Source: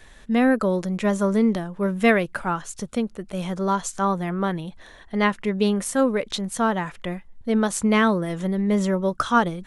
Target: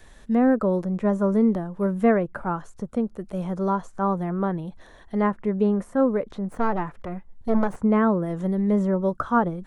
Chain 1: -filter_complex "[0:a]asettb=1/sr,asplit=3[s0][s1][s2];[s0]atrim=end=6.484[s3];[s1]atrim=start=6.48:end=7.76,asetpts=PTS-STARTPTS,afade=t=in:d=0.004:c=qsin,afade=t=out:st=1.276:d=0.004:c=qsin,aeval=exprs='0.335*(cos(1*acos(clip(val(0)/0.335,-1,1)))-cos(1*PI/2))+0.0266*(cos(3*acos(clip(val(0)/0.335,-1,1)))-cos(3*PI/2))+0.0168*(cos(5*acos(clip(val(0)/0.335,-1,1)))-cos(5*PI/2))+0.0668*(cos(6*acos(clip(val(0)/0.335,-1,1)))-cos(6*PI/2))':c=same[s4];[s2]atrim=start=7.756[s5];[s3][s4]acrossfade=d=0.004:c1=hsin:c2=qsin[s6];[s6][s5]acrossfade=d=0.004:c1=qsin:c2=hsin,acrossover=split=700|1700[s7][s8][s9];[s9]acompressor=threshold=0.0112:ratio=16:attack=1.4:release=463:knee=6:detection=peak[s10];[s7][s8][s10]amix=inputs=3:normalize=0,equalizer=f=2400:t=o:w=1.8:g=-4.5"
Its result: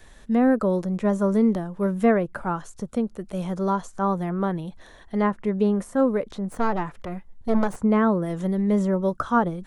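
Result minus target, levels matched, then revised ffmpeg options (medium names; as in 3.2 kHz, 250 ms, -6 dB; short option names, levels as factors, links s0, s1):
compression: peak gain reduction -8.5 dB
-filter_complex "[0:a]asettb=1/sr,asplit=3[s0][s1][s2];[s0]atrim=end=6.484[s3];[s1]atrim=start=6.48:end=7.76,asetpts=PTS-STARTPTS,afade=t=in:d=0.004:c=qsin,afade=t=out:st=1.276:d=0.004:c=qsin,aeval=exprs='0.335*(cos(1*acos(clip(val(0)/0.335,-1,1)))-cos(1*PI/2))+0.0266*(cos(3*acos(clip(val(0)/0.335,-1,1)))-cos(3*PI/2))+0.0168*(cos(5*acos(clip(val(0)/0.335,-1,1)))-cos(5*PI/2))+0.0668*(cos(6*acos(clip(val(0)/0.335,-1,1)))-cos(6*PI/2))':c=same[s4];[s2]atrim=start=7.756[s5];[s3][s4]acrossfade=d=0.004:c1=hsin:c2=qsin[s6];[s6][s5]acrossfade=d=0.004:c1=qsin:c2=hsin,acrossover=split=700|1700[s7][s8][s9];[s9]acompressor=threshold=0.00398:ratio=16:attack=1.4:release=463:knee=6:detection=peak[s10];[s7][s8][s10]amix=inputs=3:normalize=0,equalizer=f=2400:t=o:w=1.8:g=-4.5"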